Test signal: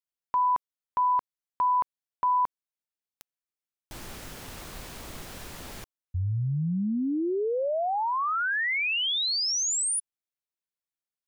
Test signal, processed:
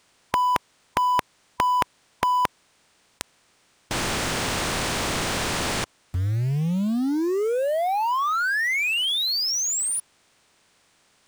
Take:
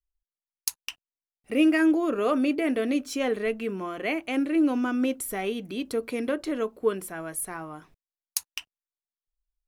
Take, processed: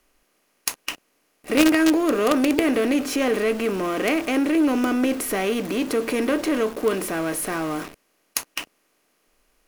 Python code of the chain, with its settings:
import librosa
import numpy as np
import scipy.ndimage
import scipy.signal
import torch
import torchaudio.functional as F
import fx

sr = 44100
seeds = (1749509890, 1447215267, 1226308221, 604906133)

p1 = fx.bin_compress(x, sr, power=0.6)
p2 = fx.high_shelf(p1, sr, hz=5600.0, db=-4.0)
p3 = fx.quant_companded(p2, sr, bits=2)
y = p2 + (p3 * librosa.db_to_amplitude(-8.0))